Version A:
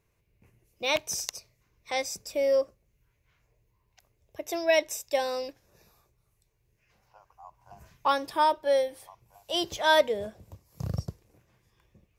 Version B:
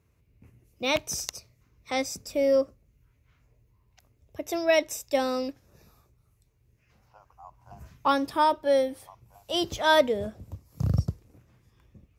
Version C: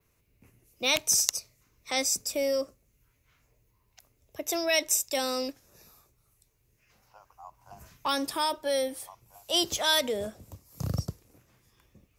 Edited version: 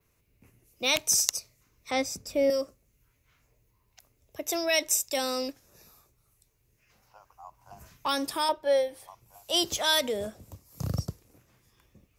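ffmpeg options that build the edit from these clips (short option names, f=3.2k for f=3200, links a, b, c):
-filter_complex "[2:a]asplit=3[a][b][c];[a]atrim=end=1.912[d];[1:a]atrim=start=1.908:end=2.502[e];[b]atrim=start=2.498:end=8.492[f];[0:a]atrim=start=8.488:end=9.082[g];[c]atrim=start=9.078[h];[d][e]acrossfade=d=0.004:c1=hsin:c2=hsin[i];[i][f]acrossfade=d=0.004:c1=hsin:c2=hsin[j];[j][g]acrossfade=d=0.004:c1=hsin:c2=hsin[k];[k][h]acrossfade=d=0.004:c1=hsin:c2=hsin"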